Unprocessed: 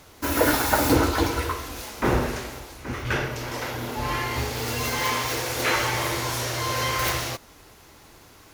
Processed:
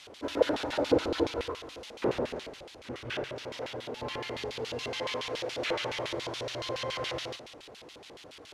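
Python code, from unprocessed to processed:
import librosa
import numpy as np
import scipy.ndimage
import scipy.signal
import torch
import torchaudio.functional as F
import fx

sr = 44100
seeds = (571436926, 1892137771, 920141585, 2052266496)

p1 = fx.delta_mod(x, sr, bps=64000, step_db=-34.0)
p2 = fx.low_shelf(p1, sr, hz=250.0, db=10.0)
p3 = p2 + fx.echo_single(p2, sr, ms=184, db=-12.5, dry=0)
p4 = fx.filter_lfo_bandpass(p3, sr, shape='square', hz=7.1, low_hz=520.0, high_hz=3300.0, q=2.2)
y = p4 * librosa.db_to_amplitude(-1.5)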